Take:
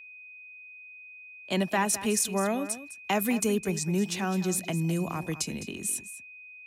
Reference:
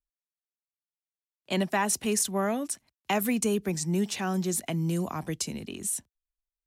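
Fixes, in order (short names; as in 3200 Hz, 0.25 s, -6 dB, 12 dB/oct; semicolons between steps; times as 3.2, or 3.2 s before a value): notch 2500 Hz, Q 30; inverse comb 0.208 s -13.5 dB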